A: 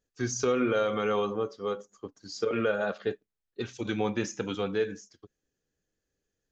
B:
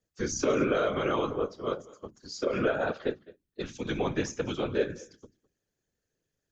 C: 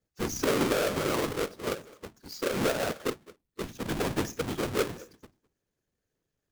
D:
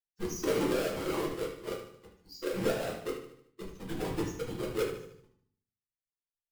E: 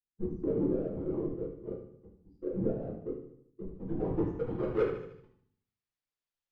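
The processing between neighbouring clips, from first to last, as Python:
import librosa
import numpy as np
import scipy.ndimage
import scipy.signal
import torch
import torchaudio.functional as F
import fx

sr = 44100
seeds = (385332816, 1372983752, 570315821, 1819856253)

y1 = fx.hum_notches(x, sr, base_hz=60, count=5)
y1 = y1 + 10.0 ** (-21.0 / 20.0) * np.pad(y1, (int(210 * sr / 1000.0), 0))[:len(y1)]
y1 = fx.whisperise(y1, sr, seeds[0])
y2 = fx.halfwave_hold(y1, sr)
y2 = F.gain(torch.from_numpy(y2), -4.5).numpy()
y3 = fx.bin_expand(y2, sr, power=1.5)
y3 = fx.echo_feedback(y3, sr, ms=75, feedback_pct=48, wet_db=-10.0)
y3 = fx.room_shoebox(y3, sr, seeds[1], volume_m3=37.0, walls='mixed', distance_m=0.74)
y3 = F.gain(torch.from_numpy(y3), -7.5).numpy()
y4 = fx.filter_sweep_lowpass(y3, sr, from_hz=340.0, to_hz=5100.0, start_s=3.54, end_s=5.97, q=0.78)
y4 = F.gain(torch.from_numpy(y4), 3.0).numpy()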